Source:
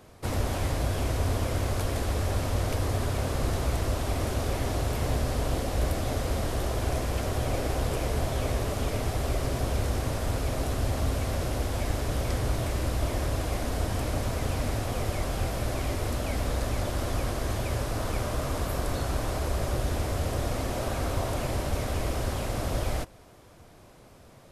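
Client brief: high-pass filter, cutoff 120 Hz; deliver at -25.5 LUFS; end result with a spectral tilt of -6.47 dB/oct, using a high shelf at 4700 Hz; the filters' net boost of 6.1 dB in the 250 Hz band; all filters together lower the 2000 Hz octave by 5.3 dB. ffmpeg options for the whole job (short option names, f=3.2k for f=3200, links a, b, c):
-af "highpass=120,equalizer=f=250:t=o:g=8,equalizer=f=2k:t=o:g=-6.5,highshelf=f=4.7k:g=-3.5,volume=5dB"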